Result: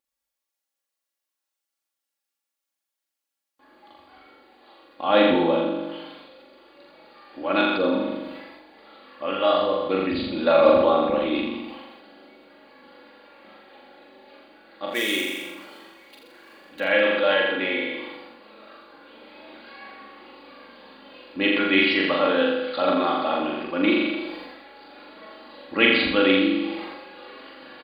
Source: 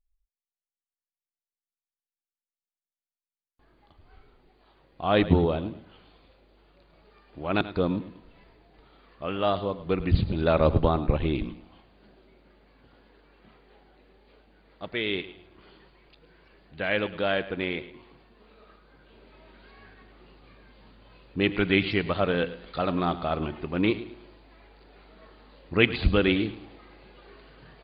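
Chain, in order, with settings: 14.87–16.80 s: dead-time distortion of 0.052 ms; in parallel at 0 dB: compression, threshold -40 dBFS, peak gain reduction 24.5 dB; on the sum: high-pass 320 Hz 12 dB/octave; comb 3.6 ms, depth 74%; on a send: flutter echo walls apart 7.2 m, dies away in 0.9 s; on the sum: decay stretcher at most 40 dB/s

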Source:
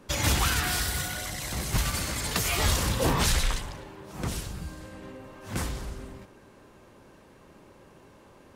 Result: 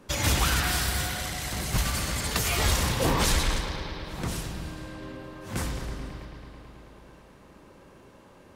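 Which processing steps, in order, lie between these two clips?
bucket-brigade echo 109 ms, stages 4096, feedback 82%, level -10 dB

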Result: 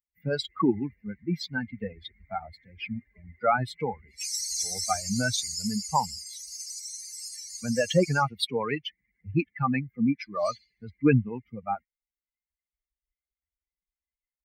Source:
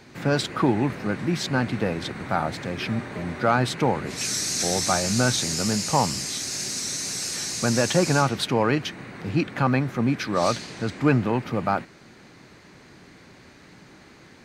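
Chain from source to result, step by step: expander on every frequency bin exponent 3; trim +3 dB

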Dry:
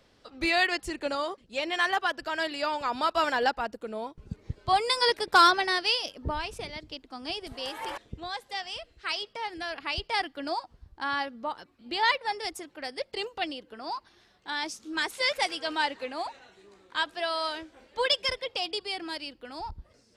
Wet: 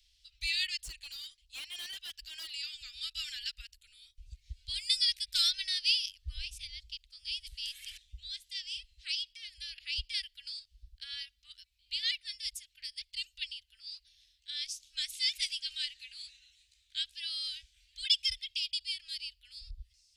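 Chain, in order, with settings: inverse Chebyshev band-stop 180–1000 Hz, stop band 60 dB; 0.84–2.51 s: hard clipper -39.5 dBFS, distortion -20 dB

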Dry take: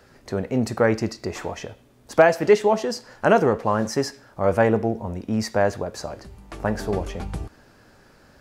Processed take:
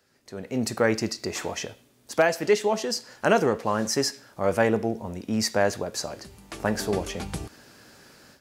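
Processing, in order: high-pass 400 Hz 6 dB/octave; peaking EQ 880 Hz -9.5 dB 3 oct; level rider gain up to 16 dB; trim -6 dB

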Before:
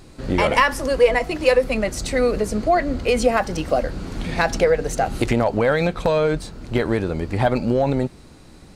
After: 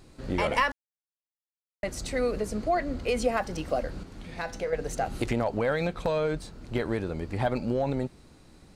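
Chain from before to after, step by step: 0.72–1.83 s: mute; 4.03–4.73 s: feedback comb 100 Hz, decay 0.54 s, harmonics all, mix 60%; trim -8.5 dB

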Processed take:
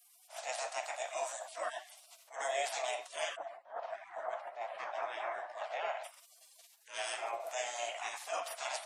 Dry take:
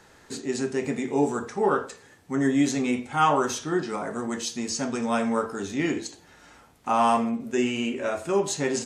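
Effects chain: spectral gate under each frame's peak -25 dB weak; 3.35–6.03 s: low-pass 1.1 kHz -> 2.2 kHz 12 dB/octave; compression 2:1, threshold -56 dBFS, peak gain reduction 12 dB; resonant high-pass 660 Hz, resonance Q 6.9; attacks held to a fixed rise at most 190 dB/s; trim +9.5 dB

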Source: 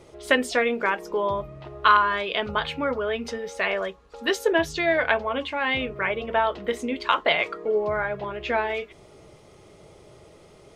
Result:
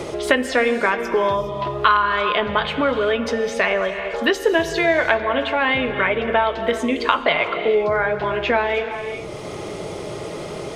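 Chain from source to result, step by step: treble shelf 5.3 kHz -5 dB; gated-style reverb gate 440 ms flat, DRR 10 dB; three bands compressed up and down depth 70%; trim +5 dB

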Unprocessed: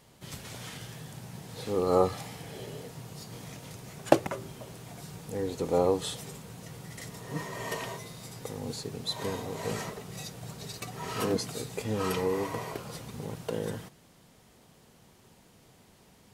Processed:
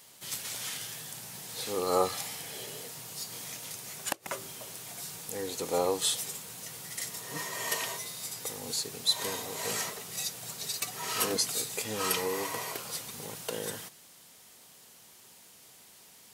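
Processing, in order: tilt EQ +3.5 dB/octave; inverted gate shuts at -13 dBFS, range -25 dB

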